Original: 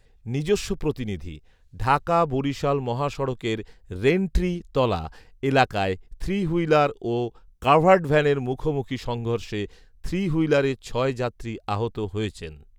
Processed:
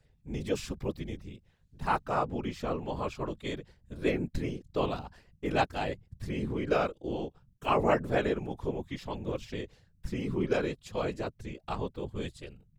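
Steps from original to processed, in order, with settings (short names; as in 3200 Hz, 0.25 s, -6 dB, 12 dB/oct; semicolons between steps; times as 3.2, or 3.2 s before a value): whisperiser; gain -9 dB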